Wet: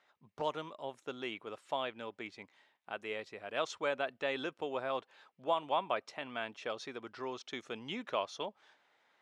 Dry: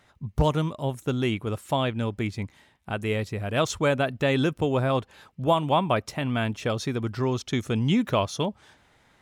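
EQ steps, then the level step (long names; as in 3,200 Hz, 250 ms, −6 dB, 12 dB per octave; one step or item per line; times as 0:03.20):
high-pass filter 470 Hz 12 dB per octave
low-pass filter 4,900 Hz 12 dB per octave
−9.0 dB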